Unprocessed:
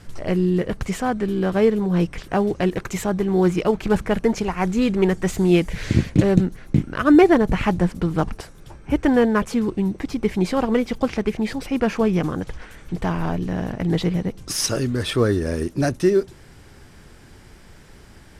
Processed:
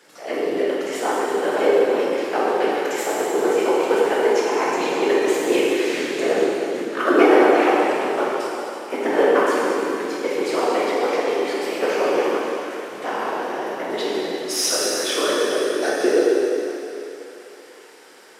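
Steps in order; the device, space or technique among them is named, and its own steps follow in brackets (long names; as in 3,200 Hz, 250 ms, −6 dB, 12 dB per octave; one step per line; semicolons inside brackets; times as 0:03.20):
whispering ghost (random phases in short frames; high-pass filter 370 Hz 24 dB per octave; convolution reverb RT60 3.1 s, pre-delay 11 ms, DRR −6 dB)
level −2 dB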